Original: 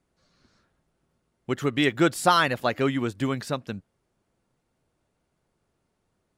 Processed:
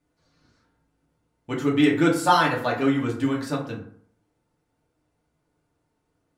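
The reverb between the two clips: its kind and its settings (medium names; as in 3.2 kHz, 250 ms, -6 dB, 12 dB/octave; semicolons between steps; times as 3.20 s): FDN reverb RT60 0.59 s, low-frequency decay 1×, high-frequency decay 0.5×, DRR -3.5 dB; trim -4.5 dB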